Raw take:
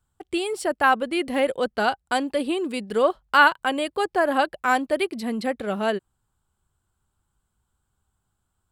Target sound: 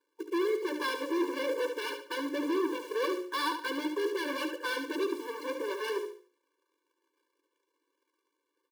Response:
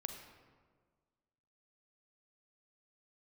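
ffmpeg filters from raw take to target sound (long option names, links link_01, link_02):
-filter_complex "[0:a]bandreject=frequency=60:width_type=h:width=6,bandreject=frequency=120:width_type=h:width=6,bandreject=frequency=180:width_type=h:width=6,bandreject=frequency=240:width_type=h:width=6,bandreject=frequency=300:width_type=h:width=6,bandreject=frequency=360:width_type=h:width=6,bandreject=frequency=420:width_type=h:width=6,bandreject=frequency=480:width_type=h:width=6,bandreject=frequency=540:width_type=h:width=6,asplit=2[link_01][link_02];[link_02]asetrate=52444,aresample=44100,atempo=0.840896,volume=-16dB[link_03];[link_01][link_03]amix=inputs=2:normalize=0,lowpass=4200,lowshelf=frequency=270:gain=10,adynamicsmooth=sensitivity=2.5:basefreq=1400,bandreject=frequency=550:width=12,aresample=11025,asoftclip=type=hard:threshold=-29.5dB,aresample=44100,acrusher=bits=3:mode=log:mix=0:aa=0.000001,aecho=1:1:72|144|216|288:0.398|0.119|0.0358|0.0107,afftfilt=real='re*eq(mod(floor(b*sr/1024/300),2),1)':imag='im*eq(mod(floor(b*sr/1024/300),2),1)':win_size=1024:overlap=0.75,volume=2.5dB"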